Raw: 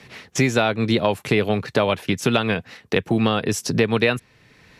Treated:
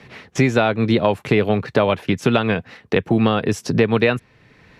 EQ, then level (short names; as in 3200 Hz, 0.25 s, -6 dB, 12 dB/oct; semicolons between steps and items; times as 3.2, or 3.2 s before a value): high shelf 4100 Hz -12 dB; +3.0 dB